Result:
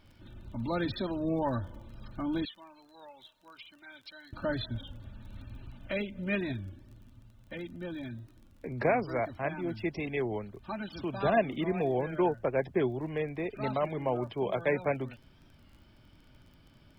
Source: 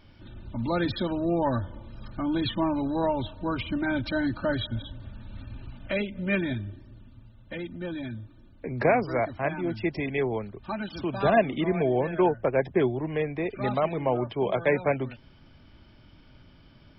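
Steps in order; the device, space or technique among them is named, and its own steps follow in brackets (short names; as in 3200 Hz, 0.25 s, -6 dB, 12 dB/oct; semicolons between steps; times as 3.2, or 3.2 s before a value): 2.45–4.33 differentiator; warped LP (record warp 33 1/3 rpm, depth 100 cents; crackle 28/s -44 dBFS; pink noise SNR 45 dB); gain -5 dB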